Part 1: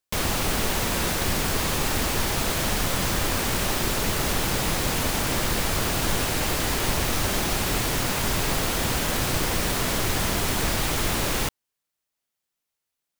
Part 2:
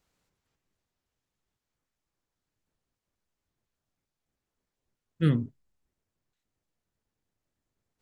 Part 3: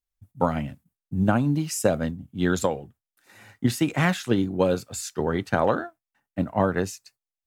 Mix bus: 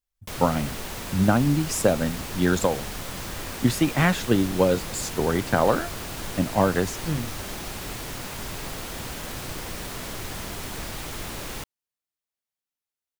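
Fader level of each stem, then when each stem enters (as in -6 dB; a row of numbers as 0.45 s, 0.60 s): -9.5 dB, -4.0 dB, +1.5 dB; 0.15 s, 1.85 s, 0.00 s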